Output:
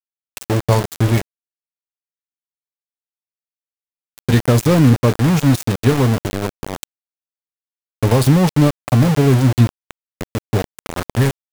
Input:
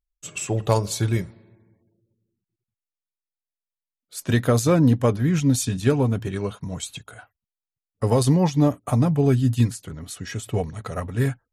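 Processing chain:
low-shelf EQ 210 Hz +7 dB
in parallel at 0 dB: downward compressor 6 to 1, threshold −29 dBFS, peak gain reduction 18.5 dB
on the sum: centre clipping without the shift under −16.5 dBFS
level +1 dB

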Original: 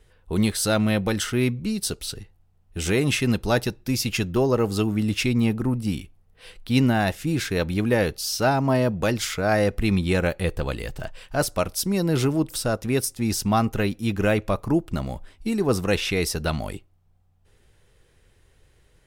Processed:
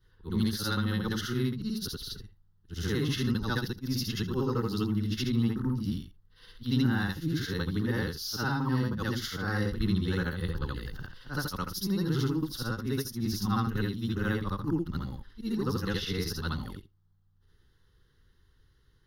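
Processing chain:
every overlapping window played backwards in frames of 172 ms
phaser with its sweep stopped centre 2,400 Hz, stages 6
level −1.5 dB

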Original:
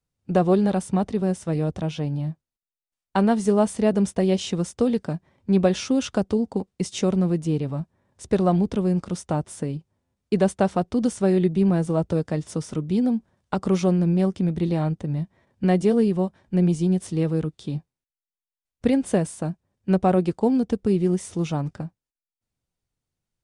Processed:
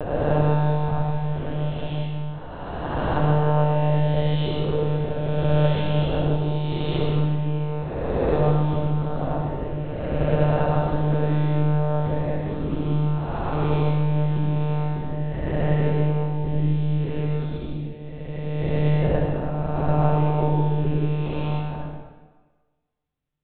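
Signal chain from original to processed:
peak hold with a rise ahead of every peak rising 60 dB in 2.55 s
one-pitch LPC vocoder at 8 kHz 150 Hz
0:00.70–0:01.36: parametric band 340 Hz −12 dB 0.93 octaves
convolution reverb RT60 1.4 s, pre-delay 61 ms, DRR −1.5 dB
level −7 dB

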